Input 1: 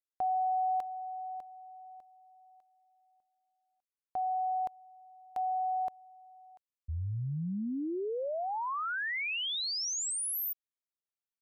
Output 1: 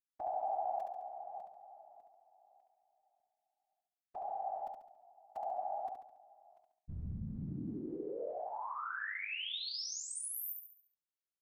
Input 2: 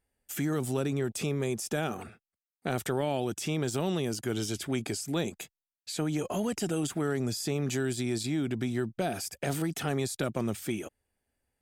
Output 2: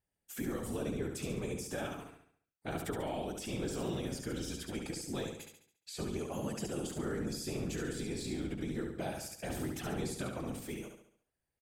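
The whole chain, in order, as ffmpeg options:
-af "afftfilt=real='hypot(re,im)*cos(2*PI*random(0))':imag='hypot(re,im)*sin(2*PI*random(1))':win_size=512:overlap=0.75,aecho=1:1:70|140|210|280|350|420:0.562|0.253|0.114|0.0512|0.0231|0.0104,volume=-2.5dB"

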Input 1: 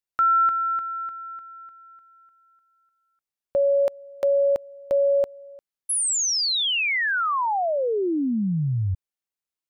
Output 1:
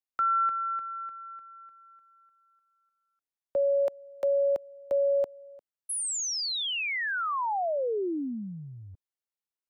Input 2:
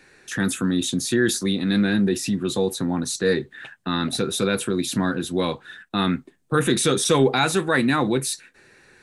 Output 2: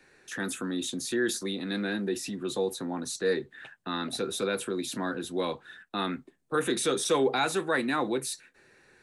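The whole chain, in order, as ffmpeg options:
-filter_complex "[0:a]equalizer=f=610:t=o:w=2.2:g=3,acrossover=split=230|580|1800[a][b][c][d];[a]acompressor=threshold=-39dB:ratio=6:attack=3:release=53:knee=1:detection=peak[e];[e][b][c][d]amix=inputs=4:normalize=0,volume=-8dB"

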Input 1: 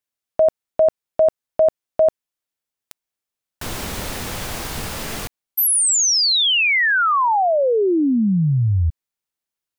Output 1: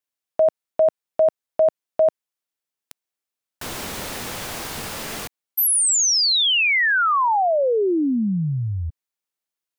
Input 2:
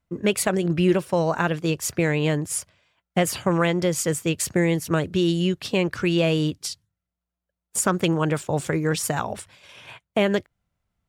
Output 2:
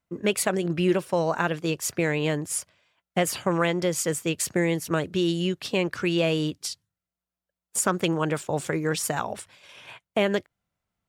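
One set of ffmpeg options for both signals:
-af "lowshelf=f=110:g=-11.5,volume=-1.5dB"

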